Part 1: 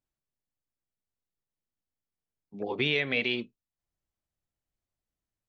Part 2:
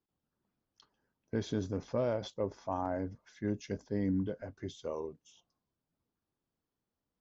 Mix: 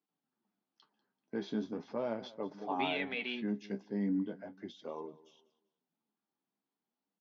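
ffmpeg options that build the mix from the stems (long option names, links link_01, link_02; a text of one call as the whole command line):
ffmpeg -i stem1.wav -i stem2.wav -filter_complex "[0:a]volume=-5.5dB[link_01];[1:a]volume=1.5dB,asplit=2[link_02][link_03];[link_03]volume=-19.5dB,aecho=0:1:193|386|579|772:1|0.28|0.0784|0.022[link_04];[link_01][link_02][link_04]amix=inputs=3:normalize=0,flanger=delay=6.6:depth=8.8:regen=43:speed=0.39:shape=sinusoidal,highpass=frequency=180:width=0.5412,highpass=frequency=180:width=1.3066,equalizer=frequency=210:width_type=q:width=4:gain=4,equalizer=frequency=530:width_type=q:width=4:gain=-5,equalizer=frequency=810:width_type=q:width=4:gain=5,lowpass=frequency=4800:width=0.5412,lowpass=frequency=4800:width=1.3066" out.wav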